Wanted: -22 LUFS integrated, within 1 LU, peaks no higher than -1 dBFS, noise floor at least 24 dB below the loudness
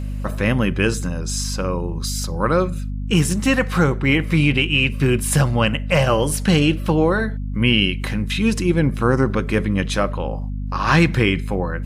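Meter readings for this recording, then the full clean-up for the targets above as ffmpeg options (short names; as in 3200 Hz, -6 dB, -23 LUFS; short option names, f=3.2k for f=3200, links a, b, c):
hum 50 Hz; harmonics up to 250 Hz; hum level -23 dBFS; loudness -19.5 LUFS; peak -3.5 dBFS; loudness target -22.0 LUFS
-> -af "bandreject=f=50:t=h:w=6,bandreject=f=100:t=h:w=6,bandreject=f=150:t=h:w=6,bandreject=f=200:t=h:w=6,bandreject=f=250:t=h:w=6"
-af "volume=-2.5dB"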